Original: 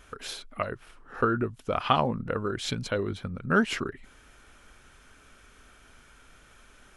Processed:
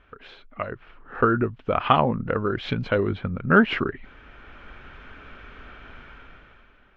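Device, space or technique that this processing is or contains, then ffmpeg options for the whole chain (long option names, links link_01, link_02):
action camera in a waterproof case: -af "lowpass=frequency=3000:width=0.5412,lowpass=frequency=3000:width=1.3066,dynaudnorm=framelen=140:gausssize=11:maxgain=15dB,volume=-3dB" -ar 44100 -c:a aac -b:a 64k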